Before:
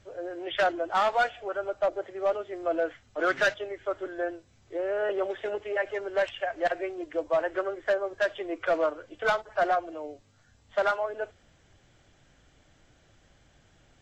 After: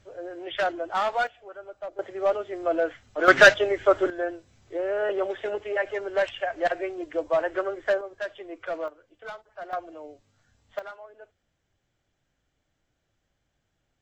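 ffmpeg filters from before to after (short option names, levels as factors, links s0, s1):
-af "asetnsamples=n=441:p=0,asendcmd='1.27 volume volume -10dB;1.99 volume volume 3dB;3.28 volume volume 11.5dB;4.1 volume volume 2dB;8.01 volume volume -6dB;8.88 volume volume -13.5dB;9.73 volume volume -4dB;10.79 volume volume -15dB',volume=0.891"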